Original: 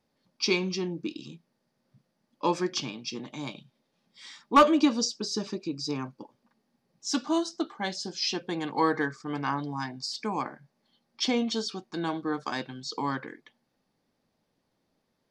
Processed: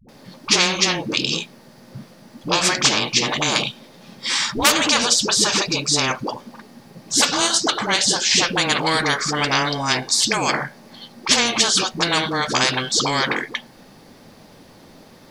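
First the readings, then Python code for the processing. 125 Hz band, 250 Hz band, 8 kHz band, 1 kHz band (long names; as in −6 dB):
+10.0 dB, +3.0 dB, +20.0 dB, +7.5 dB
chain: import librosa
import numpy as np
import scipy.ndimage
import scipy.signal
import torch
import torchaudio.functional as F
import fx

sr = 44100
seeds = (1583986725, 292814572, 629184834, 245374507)

y = fx.dispersion(x, sr, late='highs', ms=87.0, hz=370.0)
y = fx.spectral_comp(y, sr, ratio=4.0)
y = F.gain(torch.from_numpy(y), 4.5).numpy()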